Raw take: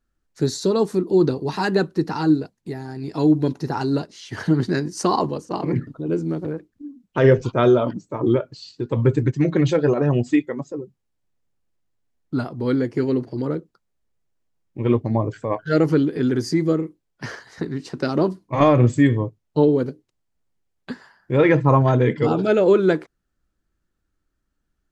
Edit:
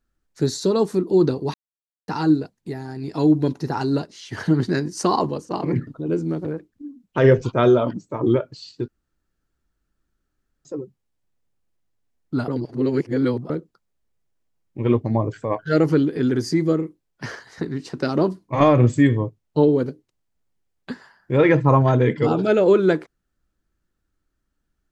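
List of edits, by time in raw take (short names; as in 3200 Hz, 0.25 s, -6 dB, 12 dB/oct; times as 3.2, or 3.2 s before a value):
1.54–2.08 mute
8.88–10.65 room tone
12.48–13.5 reverse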